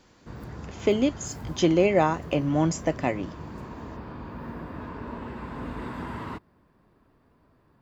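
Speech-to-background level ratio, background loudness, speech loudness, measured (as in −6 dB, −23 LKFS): 14.0 dB, −39.0 LKFS, −25.0 LKFS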